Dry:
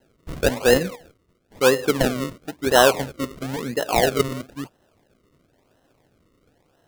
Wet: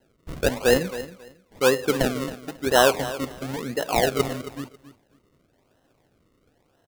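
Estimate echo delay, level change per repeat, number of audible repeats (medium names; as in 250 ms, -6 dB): 272 ms, -14.0 dB, 2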